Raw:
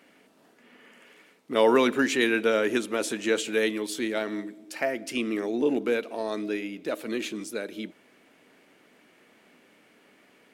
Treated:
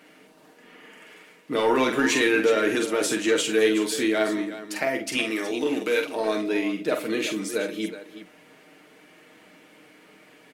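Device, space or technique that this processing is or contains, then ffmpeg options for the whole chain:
soft clipper into limiter: -filter_complex "[0:a]asoftclip=type=tanh:threshold=-13.5dB,alimiter=limit=-19dB:level=0:latency=1,asettb=1/sr,asplit=3[link_01][link_02][link_03];[link_01]atrim=end=5.174[link_04];[link_02]atrim=start=5.17:end=6.15,asetpts=PTS-STARTPTS,afade=type=in:duration=0.004:curve=qsin,afade=type=out:start_time=0.976:duration=0.004:curve=qsin,tiltshelf=frequency=1400:gain=-6.5[link_05];[link_03]atrim=start=6.146[link_06];[link_04][link_05]acrossfade=duration=0.004:curve1=hsin:curve2=qsin[link_07];[link_07][link_06]acrossfade=duration=0.004:curve1=qsin:curve2=hsin,aecho=1:1:6.5:0.55,aecho=1:1:46|71|370:0.501|0.133|0.251,volume=4dB"

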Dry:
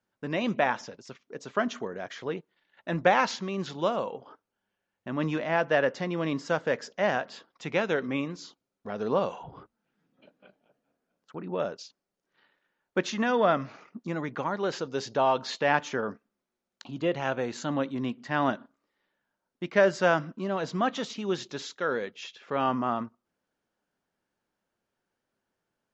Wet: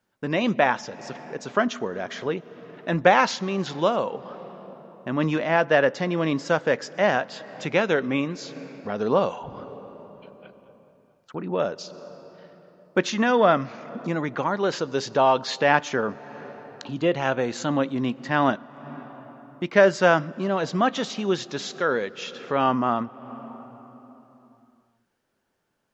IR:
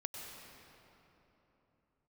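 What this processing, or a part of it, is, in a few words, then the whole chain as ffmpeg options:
ducked reverb: -filter_complex "[0:a]asplit=3[link_01][link_02][link_03];[1:a]atrim=start_sample=2205[link_04];[link_02][link_04]afir=irnorm=-1:irlink=0[link_05];[link_03]apad=whole_len=1143623[link_06];[link_05][link_06]sidechaincompress=threshold=-40dB:ratio=8:attack=35:release=340,volume=-7.5dB[link_07];[link_01][link_07]amix=inputs=2:normalize=0,volume=5dB"

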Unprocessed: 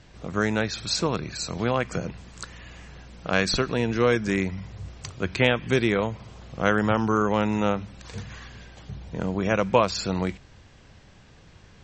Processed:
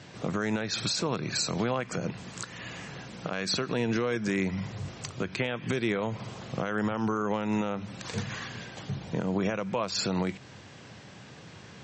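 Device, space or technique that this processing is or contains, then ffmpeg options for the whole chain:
podcast mastering chain: -af "highpass=frequency=110:width=0.5412,highpass=frequency=110:width=1.3066,deesser=0.5,acompressor=threshold=-27dB:ratio=2.5,alimiter=level_in=0.5dB:limit=-24dB:level=0:latency=1:release=227,volume=-0.5dB,volume=6.5dB" -ar 24000 -c:a libmp3lame -b:a 96k

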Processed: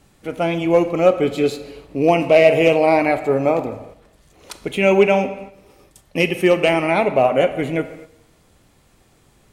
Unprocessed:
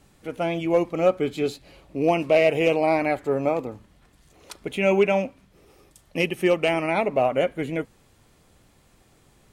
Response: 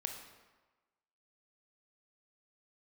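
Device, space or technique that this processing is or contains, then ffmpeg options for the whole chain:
keyed gated reverb: -filter_complex "[0:a]asplit=3[link_01][link_02][link_03];[1:a]atrim=start_sample=2205[link_04];[link_02][link_04]afir=irnorm=-1:irlink=0[link_05];[link_03]apad=whole_len=419972[link_06];[link_05][link_06]sidechaingate=range=-8dB:threshold=-53dB:ratio=16:detection=peak,volume=1dB[link_07];[link_01][link_07]amix=inputs=2:normalize=0"

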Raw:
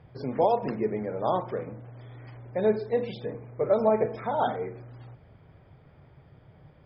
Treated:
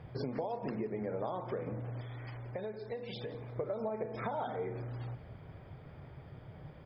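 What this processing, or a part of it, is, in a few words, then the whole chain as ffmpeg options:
serial compression, peaks first: -filter_complex "[0:a]acompressor=threshold=-33dB:ratio=6,acompressor=threshold=-38dB:ratio=3,asettb=1/sr,asplit=3[link_01][link_02][link_03];[link_01]atrim=end=2.014[link_04];[link_02]atrim=start=2.01:end=3.56,asetpts=PTS-STARTPTS,afade=type=in:duration=0.004:curve=qsin,afade=type=out:start_time=1.546:duration=0.004:curve=qsin,equalizer=frequency=200:width=0.32:gain=-5.5[link_05];[link_03]atrim=start=3.556[link_06];[link_04][link_05]acrossfade=duration=0.004:curve1=hsin:curve2=qsin[link_07];[link_07][link_06]acrossfade=duration=0.004:curve1=qsin:curve2=hsin,aecho=1:1:175|350|525:0.126|0.0453|0.0163,volume=3.5dB"

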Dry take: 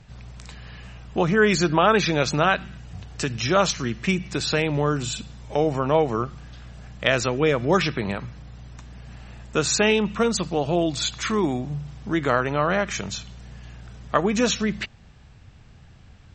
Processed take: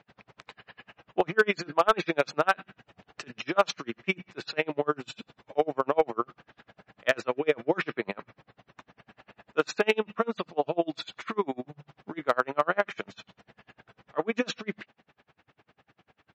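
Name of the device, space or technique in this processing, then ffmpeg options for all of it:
helicopter radio: -af "highpass=340,lowpass=2700,aeval=exprs='val(0)*pow(10,-35*(0.5-0.5*cos(2*PI*10*n/s))/20)':channel_layout=same,asoftclip=type=hard:threshold=-14dB,volume=3dB"

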